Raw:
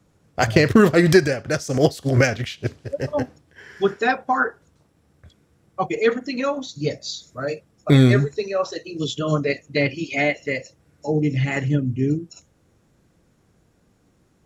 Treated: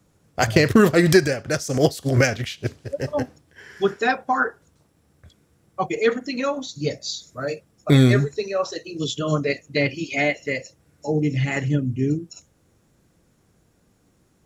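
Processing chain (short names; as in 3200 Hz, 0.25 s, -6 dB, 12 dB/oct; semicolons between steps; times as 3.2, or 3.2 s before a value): high shelf 6700 Hz +7 dB; gain -1 dB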